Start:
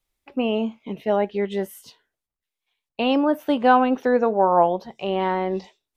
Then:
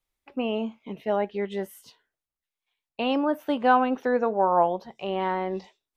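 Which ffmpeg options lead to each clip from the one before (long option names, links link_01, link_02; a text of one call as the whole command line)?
ffmpeg -i in.wav -af "equalizer=frequency=1300:width_type=o:width=1.8:gain=3,volume=-5.5dB" out.wav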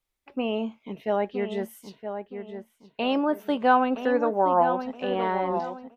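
ffmpeg -i in.wav -filter_complex "[0:a]asplit=2[link_01][link_02];[link_02]adelay=969,lowpass=frequency=2000:poles=1,volume=-8dB,asplit=2[link_03][link_04];[link_04]adelay=969,lowpass=frequency=2000:poles=1,volume=0.35,asplit=2[link_05][link_06];[link_06]adelay=969,lowpass=frequency=2000:poles=1,volume=0.35,asplit=2[link_07][link_08];[link_08]adelay=969,lowpass=frequency=2000:poles=1,volume=0.35[link_09];[link_01][link_03][link_05][link_07][link_09]amix=inputs=5:normalize=0" out.wav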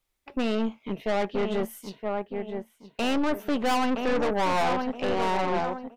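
ffmpeg -i in.wav -af "aeval=exprs='(tanh(31.6*val(0)+0.65)-tanh(0.65))/31.6':channel_layout=same,volume=7.5dB" out.wav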